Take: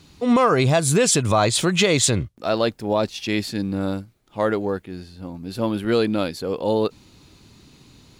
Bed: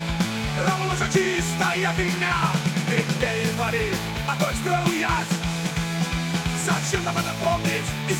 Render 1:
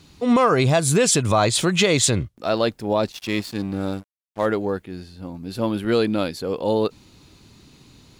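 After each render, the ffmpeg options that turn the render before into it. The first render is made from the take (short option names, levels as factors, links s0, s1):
-filter_complex "[0:a]asettb=1/sr,asplit=3[s0][s1][s2];[s0]atrim=end=3.124[s3];[s1]atrim=start=3.12:end=4.46,asetpts=PTS-STARTPTS,afade=t=in:d=0.004:c=qsin,afade=t=out:st=1.336:d=0.004:c=qsin,aeval=exprs='sgn(val(0))*max(abs(val(0))-0.0141,0)':c=same[s4];[s2]atrim=start=4.456[s5];[s3][s4]acrossfade=d=0.004:c1=hsin:c2=qsin[s6];[s6][s5]acrossfade=d=0.004:c1=qsin:c2=hsin"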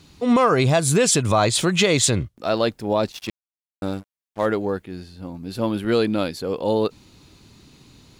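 -filter_complex "[0:a]asplit=3[s0][s1][s2];[s0]atrim=end=3.3,asetpts=PTS-STARTPTS,afade=t=out:st=3.296:d=0.004:c=hsin[s3];[s1]atrim=start=3.3:end=3.82,asetpts=PTS-STARTPTS,volume=0[s4];[s2]atrim=start=3.82,asetpts=PTS-STARTPTS,afade=t=in:d=0.004:c=hsin[s5];[s3][s4][s5]concat=n=3:v=0:a=1"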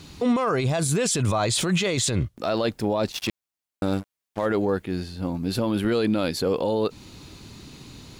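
-filter_complex "[0:a]asplit=2[s0][s1];[s1]acompressor=threshold=0.0447:ratio=6,volume=1.06[s2];[s0][s2]amix=inputs=2:normalize=0,alimiter=limit=0.178:level=0:latency=1:release=24"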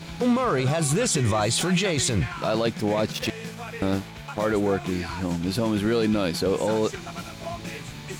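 -filter_complex "[1:a]volume=0.251[s0];[0:a][s0]amix=inputs=2:normalize=0"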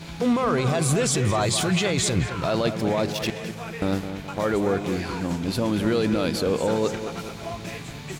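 -filter_complex "[0:a]asplit=2[s0][s1];[s1]adelay=211,lowpass=f=2200:p=1,volume=0.355,asplit=2[s2][s3];[s3]adelay=211,lowpass=f=2200:p=1,volume=0.49,asplit=2[s4][s5];[s5]adelay=211,lowpass=f=2200:p=1,volume=0.49,asplit=2[s6][s7];[s7]adelay=211,lowpass=f=2200:p=1,volume=0.49,asplit=2[s8][s9];[s9]adelay=211,lowpass=f=2200:p=1,volume=0.49,asplit=2[s10][s11];[s11]adelay=211,lowpass=f=2200:p=1,volume=0.49[s12];[s0][s2][s4][s6][s8][s10][s12]amix=inputs=7:normalize=0"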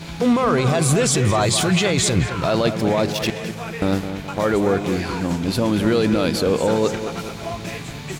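-af "volume=1.68"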